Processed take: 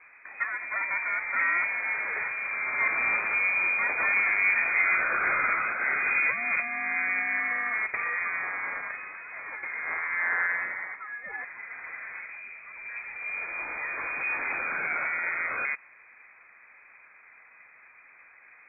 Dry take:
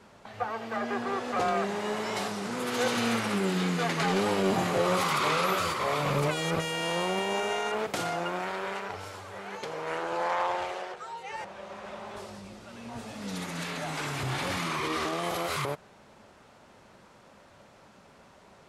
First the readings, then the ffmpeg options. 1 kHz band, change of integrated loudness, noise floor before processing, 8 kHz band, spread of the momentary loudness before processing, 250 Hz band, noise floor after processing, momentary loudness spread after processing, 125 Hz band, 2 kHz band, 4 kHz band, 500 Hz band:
-3.5 dB, +3.0 dB, -56 dBFS, under -40 dB, 15 LU, -18.0 dB, -55 dBFS, 15 LU, under -20 dB, +10.5 dB, under -40 dB, -14.0 dB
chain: -af "lowpass=f=2.2k:t=q:w=0.5098,lowpass=f=2.2k:t=q:w=0.6013,lowpass=f=2.2k:t=q:w=0.9,lowpass=f=2.2k:t=q:w=2.563,afreqshift=-2600,tiltshelf=f=970:g=-3"

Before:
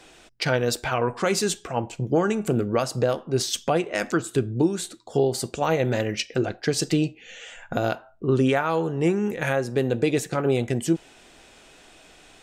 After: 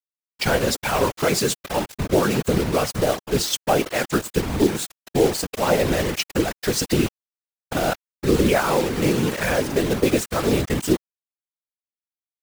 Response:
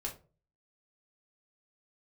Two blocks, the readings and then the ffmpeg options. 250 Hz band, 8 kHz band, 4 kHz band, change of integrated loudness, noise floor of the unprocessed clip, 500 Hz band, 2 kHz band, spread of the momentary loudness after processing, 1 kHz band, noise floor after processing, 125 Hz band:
+2.5 dB, +4.5 dB, +4.5 dB, +3.0 dB, -52 dBFS, +2.5 dB, +3.5 dB, 5 LU, +3.5 dB, under -85 dBFS, +1.0 dB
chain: -af "acrusher=bits=4:mix=0:aa=0.000001,afftfilt=real='hypot(re,im)*cos(2*PI*random(0))':imag='hypot(re,im)*sin(2*PI*random(1))':win_size=512:overlap=0.75,volume=8.5dB"

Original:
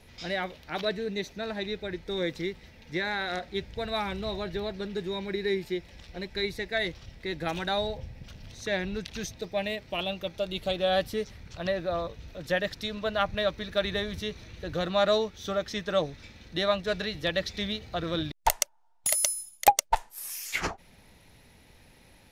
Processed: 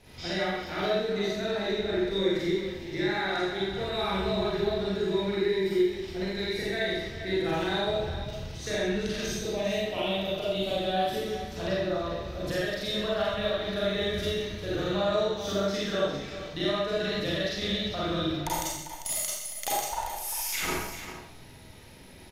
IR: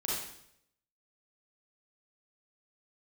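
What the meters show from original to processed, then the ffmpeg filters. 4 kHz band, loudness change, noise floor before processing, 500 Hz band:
+1.5 dB, +1.0 dB, -57 dBFS, +2.0 dB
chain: -filter_complex "[0:a]acompressor=threshold=-32dB:ratio=6,aecho=1:1:47|134|396|463:0.596|0.266|0.299|0.133[a];[1:a]atrim=start_sample=2205[b];[a][b]afir=irnorm=-1:irlink=0"

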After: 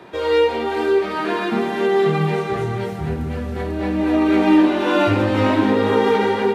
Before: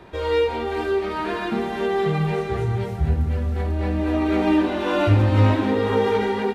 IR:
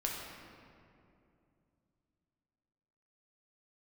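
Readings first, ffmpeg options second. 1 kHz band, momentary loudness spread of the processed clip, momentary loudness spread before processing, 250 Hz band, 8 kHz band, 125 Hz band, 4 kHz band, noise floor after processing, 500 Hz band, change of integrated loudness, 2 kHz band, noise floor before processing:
+4.0 dB, 10 LU, 7 LU, +5.0 dB, n/a, -4.5 dB, +4.5 dB, -26 dBFS, +4.0 dB, +3.0 dB, +4.5 dB, -28 dBFS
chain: -filter_complex "[0:a]highpass=170,asplit=2[a][b];[1:a]atrim=start_sample=2205,adelay=25[c];[b][c]afir=irnorm=-1:irlink=0,volume=-12.5dB[d];[a][d]amix=inputs=2:normalize=0,volume=4dB"

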